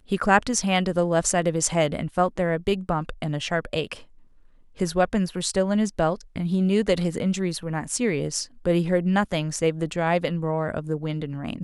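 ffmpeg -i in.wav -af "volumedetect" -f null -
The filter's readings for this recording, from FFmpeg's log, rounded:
mean_volume: -24.4 dB
max_volume: -4.2 dB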